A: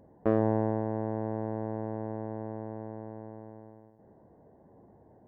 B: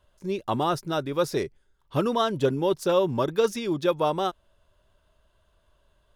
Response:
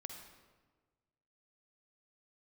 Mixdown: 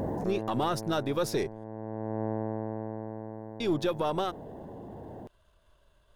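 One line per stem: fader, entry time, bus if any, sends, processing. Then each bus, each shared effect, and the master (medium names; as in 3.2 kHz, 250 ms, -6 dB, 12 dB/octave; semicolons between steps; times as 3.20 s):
-9.0 dB, 0.00 s, no send, level flattener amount 100%; auto duck -12 dB, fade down 1.30 s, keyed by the second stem
+1.5 dB, 0.00 s, muted 1.64–3.60 s, no send, partial rectifier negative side -3 dB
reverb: none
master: peak limiter -19.5 dBFS, peak gain reduction 9 dB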